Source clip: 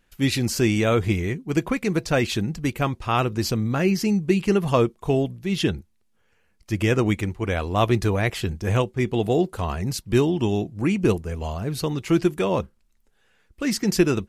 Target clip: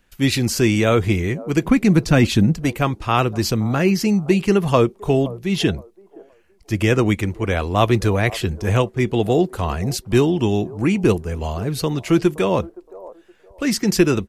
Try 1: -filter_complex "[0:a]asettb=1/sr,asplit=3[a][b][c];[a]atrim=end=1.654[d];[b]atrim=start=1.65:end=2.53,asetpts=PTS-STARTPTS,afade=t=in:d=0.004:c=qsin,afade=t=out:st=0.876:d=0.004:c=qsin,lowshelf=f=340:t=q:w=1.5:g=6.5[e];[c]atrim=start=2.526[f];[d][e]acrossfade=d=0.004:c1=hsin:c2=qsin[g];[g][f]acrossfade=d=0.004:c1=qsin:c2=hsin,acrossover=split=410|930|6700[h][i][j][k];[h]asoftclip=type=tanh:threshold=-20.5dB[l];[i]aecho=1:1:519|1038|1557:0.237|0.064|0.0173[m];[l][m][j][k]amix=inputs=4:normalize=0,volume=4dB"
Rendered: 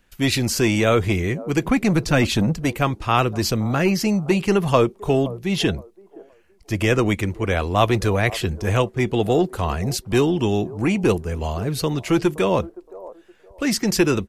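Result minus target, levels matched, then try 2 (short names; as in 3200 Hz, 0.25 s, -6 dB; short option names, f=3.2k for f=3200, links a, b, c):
soft clip: distortion +14 dB
-filter_complex "[0:a]asettb=1/sr,asplit=3[a][b][c];[a]atrim=end=1.654[d];[b]atrim=start=1.65:end=2.53,asetpts=PTS-STARTPTS,afade=t=in:d=0.004:c=qsin,afade=t=out:st=0.876:d=0.004:c=qsin,lowshelf=f=340:t=q:w=1.5:g=6.5[e];[c]atrim=start=2.526[f];[d][e]acrossfade=d=0.004:c1=hsin:c2=qsin[g];[g][f]acrossfade=d=0.004:c1=qsin:c2=hsin,acrossover=split=410|930|6700[h][i][j][k];[h]asoftclip=type=tanh:threshold=-9.5dB[l];[i]aecho=1:1:519|1038|1557:0.237|0.064|0.0173[m];[l][m][j][k]amix=inputs=4:normalize=0,volume=4dB"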